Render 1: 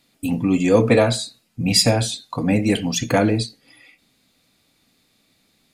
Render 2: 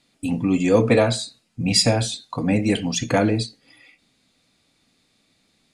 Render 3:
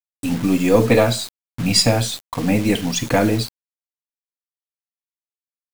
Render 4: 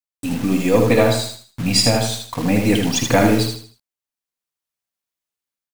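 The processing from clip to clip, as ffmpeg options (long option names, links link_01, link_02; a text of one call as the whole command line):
ffmpeg -i in.wav -af "lowpass=frequency=10000:width=0.5412,lowpass=frequency=10000:width=1.3066,volume=-1.5dB" out.wav
ffmpeg -i in.wav -af "aeval=exprs='if(lt(val(0),0),0.708*val(0),val(0))':channel_layout=same,acrusher=bits=5:mix=0:aa=0.000001,volume=3.5dB" out.wav
ffmpeg -i in.wav -filter_complex "[0:a]dynaudnorm=framelen=500:gausssize=3:maxgain=9dB,asplit=2[link_01][link_02];[link_02]aecho=0:1:78|156|234|312:0.562|0.191|0.065|0.0221[link_03];[link_01][link_03]amix=inputs=2:normalize=0,volume=-1.5dB" out.wav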